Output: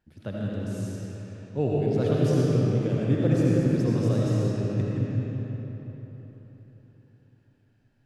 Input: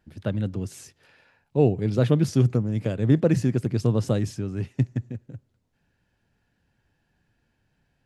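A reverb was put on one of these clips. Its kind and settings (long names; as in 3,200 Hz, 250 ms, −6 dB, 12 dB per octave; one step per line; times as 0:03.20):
comb and all-pass reverb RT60 4.1 s, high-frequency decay 0.7×, pre-delay 40 ms, DRR −5.5 dB
level −7.5 dB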